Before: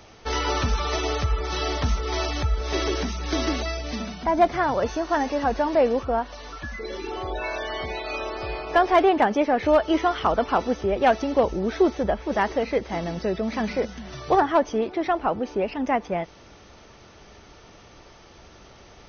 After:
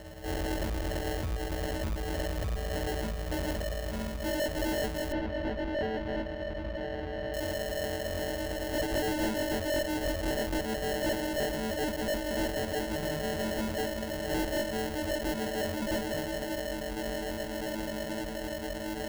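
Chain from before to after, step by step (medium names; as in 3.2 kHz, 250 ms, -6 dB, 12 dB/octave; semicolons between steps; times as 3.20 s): partials quantised in pitch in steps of 6 st; peaking EQ 4.9 kHz -13.5 dB 0.7 oct; echo that smears into a reverb 1969 ms, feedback 61%, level -11 dB; valve stage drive 25 dB, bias 0.5; peak limiter -29.5 dBFS, peak gain reduction 7 dB; sample-rate reducer 1.2 kHz, jitter 0%; 5.12–7.34 s: distance through air 300 m; trim +2.5 dB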